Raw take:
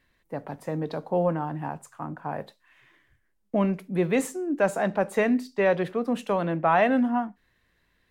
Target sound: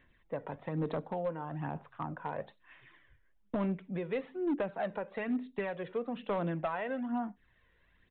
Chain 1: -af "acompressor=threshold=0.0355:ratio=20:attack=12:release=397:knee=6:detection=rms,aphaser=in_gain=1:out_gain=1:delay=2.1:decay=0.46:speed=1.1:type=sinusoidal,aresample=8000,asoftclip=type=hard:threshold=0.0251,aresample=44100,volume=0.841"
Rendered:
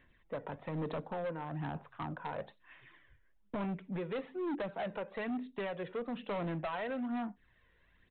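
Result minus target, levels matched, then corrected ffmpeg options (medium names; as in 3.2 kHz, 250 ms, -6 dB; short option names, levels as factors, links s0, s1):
hard clipper: distortion +9 dB
-af "acompressor=threshold=0.0355:ratio=20:attack=12:release=397:knee=6:detection=rms,aphaser=in_gain=1:out_gain=1:delay=2.1:decay=0.46:speed=1.1:type=sinusoidal,aresample=8000,asoftclip=type=hard:threshold=0.0531,aresample=44100,volume=0.841"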